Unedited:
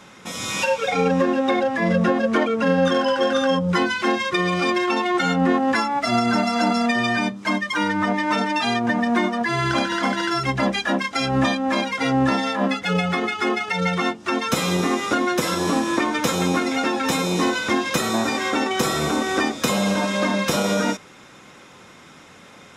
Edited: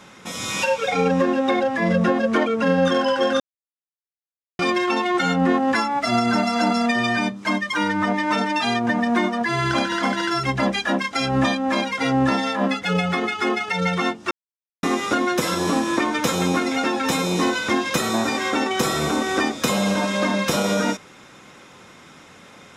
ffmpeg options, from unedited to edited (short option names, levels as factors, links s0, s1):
-filter_complex "[0:a]asplit=5[s0][s1][s2][s3][s4];[s0]atrim=end=3.4,asetpts=PTS-STARTPTS,afade=t=out:st=3.396:d=0.004:c=hsin[s5];[s1]atrim=start=3.4:end=4.59,asetpts=PTS-STARTPTS,volume=0[s6];[s2]atrim=start=4.59:end=14.31,asetpts=PTS-STARTPTS,afade=t=in:d=0.004:c=hsin,afade=t=out:st=9.716:d=0.004:c=hsin[s7];[s3]atrim=start=14.31:end=14.83,asetpts=PTS-STARTPTS,volume=0[s8];[s4]atrim=start=14.83,asetpts=PTS-STARTPTS,afade=t=in:d=0.004:c=hsin[s9];[s5][s6][s7][s8][s9]concat=n=5:v=0:a=1"